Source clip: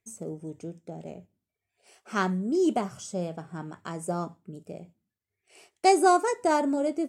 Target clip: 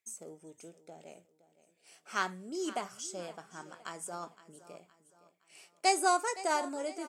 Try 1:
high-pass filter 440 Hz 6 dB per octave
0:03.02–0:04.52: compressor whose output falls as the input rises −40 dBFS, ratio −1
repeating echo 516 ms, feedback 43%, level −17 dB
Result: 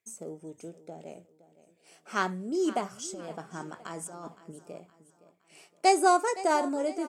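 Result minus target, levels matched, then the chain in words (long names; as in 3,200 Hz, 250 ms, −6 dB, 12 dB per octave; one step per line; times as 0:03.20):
2,000 Hz band −3.0 dB
high-pass filter 1,500 Hz 6 dB per octave
0:03.02–0:04.52: compressor whose output falls as the input rises −40 dBFS, ratio −1
repeating echo 516 ms, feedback 43%, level −17 dB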